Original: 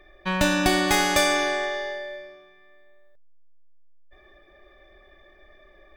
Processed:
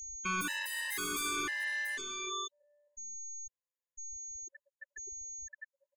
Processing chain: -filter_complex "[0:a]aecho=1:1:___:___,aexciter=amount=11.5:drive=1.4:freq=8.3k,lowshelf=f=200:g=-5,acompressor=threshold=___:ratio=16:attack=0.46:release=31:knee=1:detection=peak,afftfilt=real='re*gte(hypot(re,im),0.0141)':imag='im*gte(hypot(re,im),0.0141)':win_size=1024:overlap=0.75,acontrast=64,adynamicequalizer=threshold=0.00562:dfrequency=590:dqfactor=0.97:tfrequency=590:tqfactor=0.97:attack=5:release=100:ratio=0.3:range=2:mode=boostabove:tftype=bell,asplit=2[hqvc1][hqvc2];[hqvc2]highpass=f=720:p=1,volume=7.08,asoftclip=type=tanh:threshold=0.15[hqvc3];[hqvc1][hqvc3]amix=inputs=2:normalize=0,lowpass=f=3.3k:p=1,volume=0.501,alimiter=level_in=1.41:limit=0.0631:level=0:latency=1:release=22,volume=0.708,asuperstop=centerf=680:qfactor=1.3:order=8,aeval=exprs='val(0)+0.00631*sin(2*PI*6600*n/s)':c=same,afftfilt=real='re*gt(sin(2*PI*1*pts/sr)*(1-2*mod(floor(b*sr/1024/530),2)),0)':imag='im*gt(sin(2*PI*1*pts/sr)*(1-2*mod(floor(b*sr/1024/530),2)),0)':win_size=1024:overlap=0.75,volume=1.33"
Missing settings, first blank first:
689, 0.0708, 0.0316